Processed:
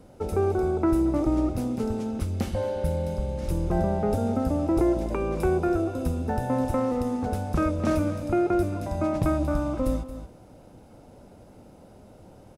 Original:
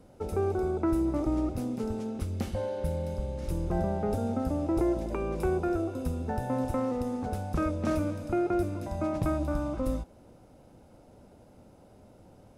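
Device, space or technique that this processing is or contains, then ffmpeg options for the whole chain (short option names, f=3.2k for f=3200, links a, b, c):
ducked delay: -filter_complex "[0:a]asplit=3[a][b][c];[b]adelay=226,volume=-7.5dB[d];[c]apad=whole_len=564314[e];[d][e]sidechaincompress=threshold=-36dB:ratio=8:attack=8.5:release=390[f];[a][f]amix=inputs=2:normalize=0,volume=4.5dB"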